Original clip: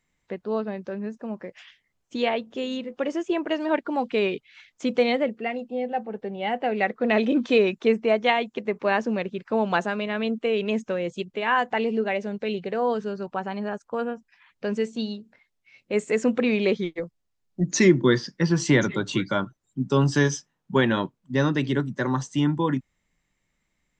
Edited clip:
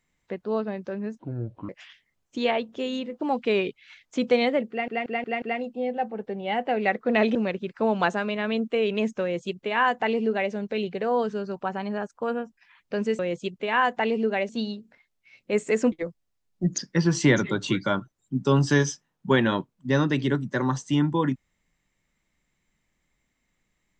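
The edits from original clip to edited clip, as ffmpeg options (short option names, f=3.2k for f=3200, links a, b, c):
-filter_complex "[0:a]asplit=13[a][b][c][d][e][f][g][h][i][j][k][l][m];[a]atrim=end=1.194[n];[b]atrim=start=1.19:end=1.47,asetpts=PTS-STARTPTS,asetrate=24696,aresample=44100[o];[c]atrim=start=1.466:end=2.992[p];[d]atrim=start=3.878:end=5.552[q];[e]atrim=start=5.368:end=5.552[r];[f]atrim=start=5.368:end=5.552[s];[g]atrim=start=5.368:end=5.552[t];[h]atrim=start=5.368:end=7.302[u];[i]atrim=start=9.058:end=14.902[v];[j]atrim=start=10.928:end=12.232[w];[k]atrim=start=14.898:end=16.332[x];[l]atrim=start=16.888:end=17.752[y];[m]atrim=start=18.228[z];[n][o]acrossfade=d=0.004:c1=hsin:c2=hsin[aa];[aa][p]acrossfade=d=0.004:c1=hsin:c2=hsin[ab];[ab][q]acrossfade=d=0.004:c1=hsin:c2=hsin[ac];[ac][r]acrossfade=d=0.004:c1=hsin:c2=hsin[ad];[ad][s]acrossfade=d=0.004:c1=hsin:c2=hsin[ae];[ae][t]acrossfade=d=0.004:c1=hsin:c2=hsin[af];[af][u]acrossfade=d=0.004:c1=hsin:c2=hsin[ag];[ag][v]acrossfade=d=0.004:c1=hsin:c2=hsin[ah];[ah][w]acrossfade=d=0.004:c1=hsin:c2=hsin[ai];[ai][x]acrossfade=d=0.004:c1=hsin:c2=hsin[aj];[aj][y]acrossfade=d=0.004:c1=hsin:c2=hsin[ak];[ak][z]acrossfade=d=0.004:c1=hsin:c2=hsin"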